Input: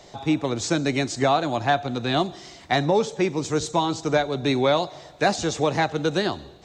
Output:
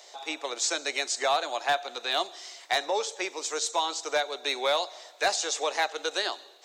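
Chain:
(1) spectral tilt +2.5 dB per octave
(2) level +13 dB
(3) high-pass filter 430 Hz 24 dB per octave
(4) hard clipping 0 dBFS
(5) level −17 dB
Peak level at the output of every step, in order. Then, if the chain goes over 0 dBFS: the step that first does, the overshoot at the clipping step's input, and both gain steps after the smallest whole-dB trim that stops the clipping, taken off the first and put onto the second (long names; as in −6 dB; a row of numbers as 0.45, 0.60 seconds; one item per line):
−6.5, +6.5, +6.5, 0.0, −17.0 dBFS
step 2, 6.5 dB
step 2 +6 dB, step 5 −10 dB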